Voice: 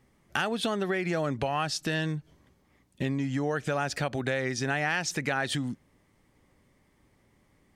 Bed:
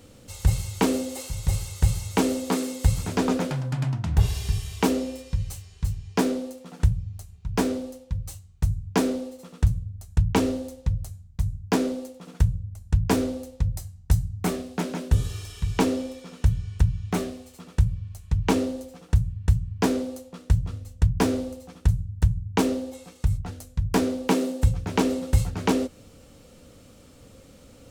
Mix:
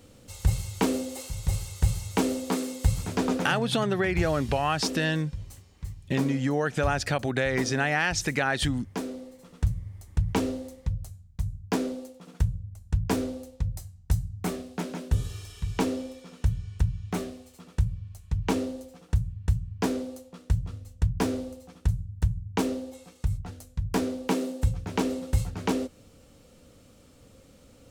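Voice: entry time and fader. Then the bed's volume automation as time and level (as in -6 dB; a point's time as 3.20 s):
3.10 s, +3.0 dB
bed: 3.40 s -3 dB
3.87 s -10.5 dB
9.07 s -10.5 dB
9.69 s -4.5 dB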